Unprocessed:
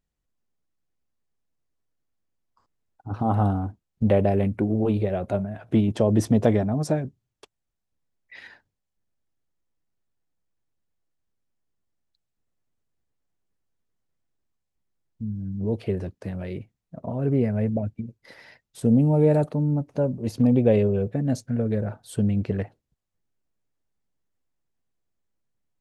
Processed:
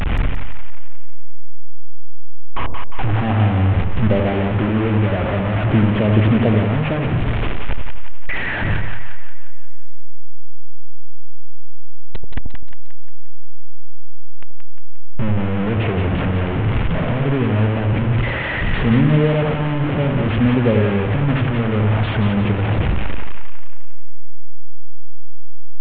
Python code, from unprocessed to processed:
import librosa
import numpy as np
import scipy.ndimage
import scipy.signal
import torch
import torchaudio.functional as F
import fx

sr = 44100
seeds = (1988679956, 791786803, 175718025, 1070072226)

y = fx.delta_mod(x, sr, bps=16000, step_db=-17.0)
y = fx.low_shelf(y, sr, hz=190.0, db=9.0)
y = fx.echo_split(y, sr, split_hz=720.0, low_ms=84, high_ms=177, feedback_pct=52, wet_db=-5.0)
y = F.gain(torch.from_numpy(y), -1.0).numpy()